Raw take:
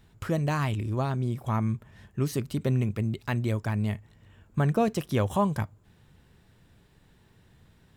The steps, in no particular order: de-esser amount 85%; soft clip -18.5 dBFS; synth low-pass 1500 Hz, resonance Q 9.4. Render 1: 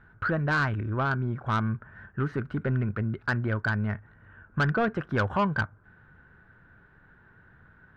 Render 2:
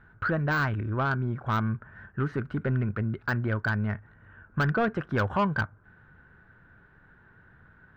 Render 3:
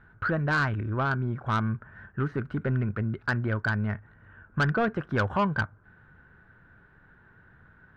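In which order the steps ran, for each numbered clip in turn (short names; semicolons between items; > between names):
synth low-pass > de-esser > soft clip; synth low-pass > soft clip > de-esser; de-esser > synth low-pass > soft clip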